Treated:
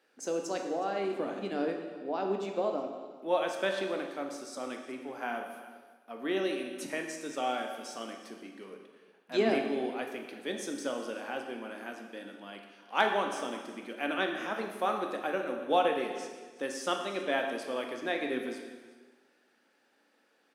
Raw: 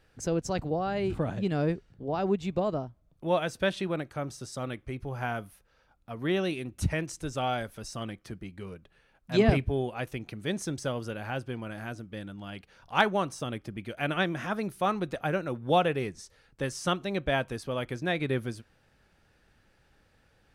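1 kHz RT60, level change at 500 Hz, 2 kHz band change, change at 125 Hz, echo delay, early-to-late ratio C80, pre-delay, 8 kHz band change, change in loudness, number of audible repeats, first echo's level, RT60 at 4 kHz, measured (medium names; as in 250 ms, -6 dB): 1.4 s, -1.5 dB, -2.0 dB, -20.0 dB, 367 ms, 6.5 dB, 6 ms, -2.0 dB, -2.5 dB, 1, -19.0 dB, 1.3 s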